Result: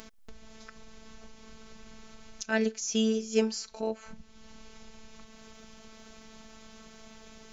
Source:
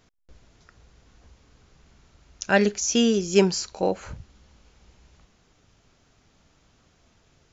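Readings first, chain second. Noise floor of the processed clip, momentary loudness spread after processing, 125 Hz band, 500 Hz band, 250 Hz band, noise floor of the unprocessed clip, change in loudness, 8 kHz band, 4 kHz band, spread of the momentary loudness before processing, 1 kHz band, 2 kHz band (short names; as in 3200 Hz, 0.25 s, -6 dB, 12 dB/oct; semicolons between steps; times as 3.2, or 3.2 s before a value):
-53 dBFS, 10 LU, under -10 dB, -7.5 dB, -6.5 dB, -63 dBFS, -7.5 dB, n/a, -7.5 dB, 9 LU, -11.0 dB, -8.0 dB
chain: upward compressor, threshold -25 dBFS; robotiser 220 Hz; gain -6 dB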